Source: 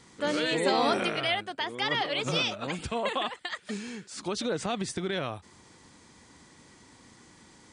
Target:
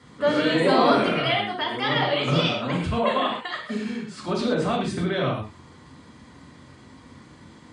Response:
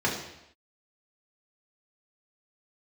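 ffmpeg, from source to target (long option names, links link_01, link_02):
-filter_complex "[1:a]atrim=start_sample=2205,atrim=end_sample=3969,asetrate=28224,aresample=44100[link_01];[0:a][link_01]afir=irnorm=-1:irlink=0,volume=-8dB"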